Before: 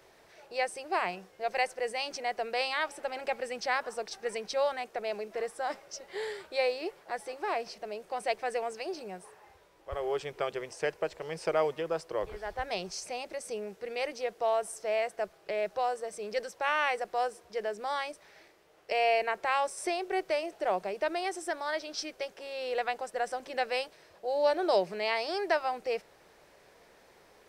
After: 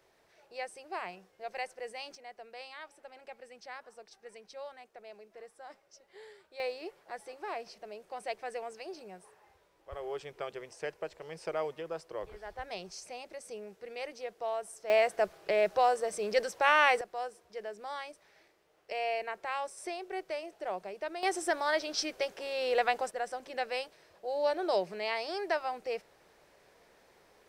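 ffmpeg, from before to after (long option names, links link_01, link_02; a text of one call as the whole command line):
ffmpeg -i in.wav -af "asetnsamples=nb_out_samples=441:pad=0,asendcmd='2.15 volume volume -15.5dB;6.6 volume volume -6.5dB;14.9 volume volume 4.5dB;17.01 volume volume -7dB;21.23 volume volume 3.5dB;23.11 volume volume -3.5dB',volume=-8.5dB" out.wav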